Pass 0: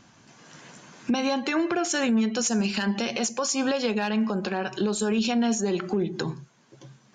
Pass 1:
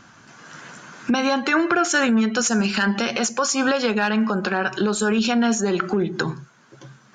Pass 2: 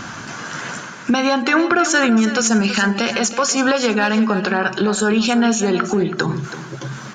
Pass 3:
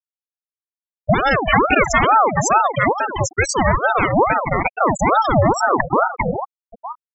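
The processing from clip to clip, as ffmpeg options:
ffmpeg -i in.wav -af "equalizer=frequency=1400:width=2.3:gain=10,volume=4dB" out.wav
ffmpeg -i in.wav -af "areverse,acompressor=mode=upward:threshold=-21dB:ratio=2.5,areverse,aecho=1:1:327|654|981:0.251|0.0578|0.0133,volume=3.5dB" out.wav
ffmpeg -i in.wav -af "afftfilt=real='re*gte(hypot(re,im),0.398)':imag='im*gte(hypot(re,im),0.398)':win_size=1024:overlap=0.75,aeval=exprs='val(0)*sin(2*PI*720*n/s+720*0.55/2.3*sin(2*PI*2.3*n/s))':channel_layout=same,volume=4.5dB" out.wav

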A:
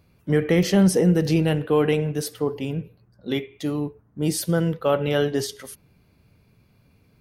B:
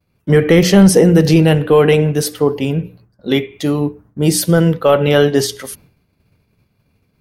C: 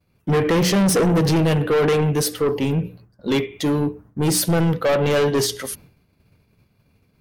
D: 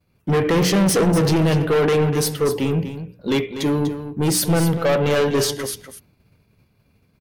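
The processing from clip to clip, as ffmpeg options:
ffmpeg -i in.wav -af "agate=range=-33dB:threshold=-49dB:ratio=3:detection=peak,bandreject=frequency=60:width_type=h:width=6,bandreject=frequency=120:width_type=h:width=6,bandreject=frequency=180:width_type=h:width=6,bandreject=frequency=240:width_type=h:width=6,bandreject=frequency=300:width_type=h:width=6,apsyclip=12dB,volume=-1.5dB" out.wav
ffmpeg -i in.wav -af "asoftclip=type=tanh:threshold=-14.5dB" out.wav
ffmpeg -i in.wav -af "aecho=1:1:245:0.299" out.wav

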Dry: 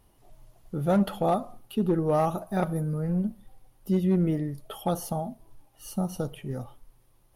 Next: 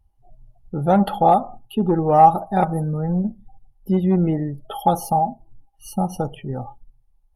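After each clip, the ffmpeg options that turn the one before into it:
ffmpeg -i in.wav -af "afftdn=noise_reduction=25:noise_floor=-48,equalizer=frequency=810:width_type=o:width=0.22:gain=14.5,volume=5.5dB" out.wav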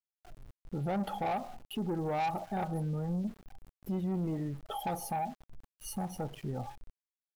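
ffmpeg -i in.wav -af "asoftclip=type=tanh:threshold=-14.5dB,alimiter=level_in=0.5dB:limit=-24dB:level=0:latency=1:release=352,volume=-0.5dB,aeval=exprs='val(0)*gte(abs(val(0)),0.00501)':channel_layout=same,volume=-4dB" out.wav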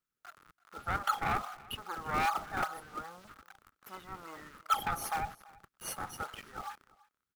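ffmpeg -i in.wav -filter_complex "[0:a]highpass=frequency=1300:width_type=q:width=5.5,asplit=2[link_01][link_02];[link_02]acrusher=samples=39:mix=1:aa=0.000001:lfo=1:lforange=62.4:lforate=2.5,volume=-6dB[link_03];[link_01][link_03]amix=inputs=2:normalize=0,aecho=1:1:334:0.0708,volume=2dB" out.wav

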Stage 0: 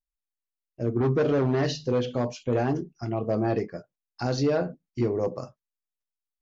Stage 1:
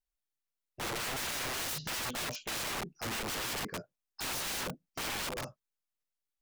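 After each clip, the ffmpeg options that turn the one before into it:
ffmpeg -i in.wav -af "aeval=exprs='(mod(37.6*val(0)+1,2)-1)/37.6':channel_layout=same" out.wav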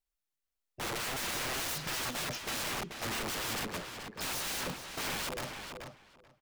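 ffmpeg -i in.wav -filter_complex "[0:a]asplit=2[link_01][link_02];[link_02]adelay=434,lowpass=frequency=4900:poles=1,volume=-6dB,asplit=2[link_03][link_04];[link_04]adelay=434,lowpass=frequency=4900:poles=1,volume=0.16,asplit=2[link_05][link_06];[link_06]adelay=434,lowpass=frequency=4900:poles=1,volume=0.16[link_07];[link_01][link_03][link_05][link_07]amix=inputs=4:normalize=0" out.wav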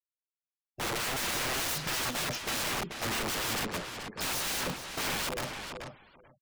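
ffmpeg -i in.wav -af "afftfilt=real='re*gte(hypot(re,im),0.00112)':imag='im*gte(hypot(re,im),0.00112)':win_size=1024:overlap=0.75,volume=3.5dB" out.wav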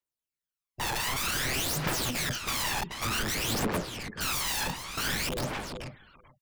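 ffmpeg -i in.wav -af "aphaser=in_gain=1:out_gain=1:delay=1.2:decay=0.61:speed=0.54:type=triangular" out.wav

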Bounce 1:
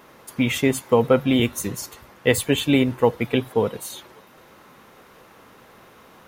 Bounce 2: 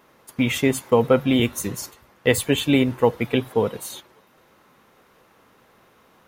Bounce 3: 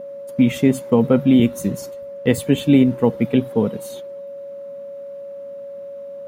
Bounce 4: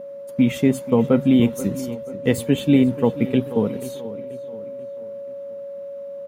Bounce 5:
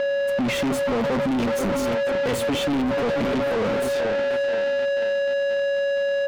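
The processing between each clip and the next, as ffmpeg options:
ffmpeg -i in.wav -af "agate=range=-7dB:threshold=-38dB:ratio=16:detection=peak" out.wav
ffmpeg -i in.wav -af "aeval=exprs='val(0)+0.0355*sin(2*PI*560*n/s)':channel_layout=same,equalizer=frequency=200:width_type=o:width=1.7:gain=14.5,volume=-5dB" out.wav
ffmpeg -i in.wav -filter_complex "[0:a]asplit=2[link_01][link_02];[link_02]adelay=484,lowpass=frequency=3900:poles=1,volume=-15dB,asplit=2[link_03][link_04];[link_04]adelay=484,lowpass=frequency=3900:poles=1,volume=0.47,asplit=2[link_05][link_06];[link_06]adelay=484,lowpass=frequency=3900:poles=1,volume=0.47,asplit=2[link_07][link_08];[link_08]adelay=484,lowpass=frequency=3900:poles=1,volume=0.47[link_09];[link_01][link_03][link_05][link_07][link_09]amix=inputs=5:normalize=0,volume=-2dB" out.wav
ffmpeg -i in.wav -filter_complex "[0:a]asoftclip=type=hard:threshold=-13dB,asplit=2[link_01][link_02];[link_02]highpass=frequency=720:poles=1,volume=34dB,asoftclip=type=tanh:threshold=-13dB[link_03];[link_01][link_03]amix=inputs=2:normalize=0,lowpass=frequency=2100:poles=1,volume=-6dB,asoftclip=type=tanh:threshold=-20dB" out.wav

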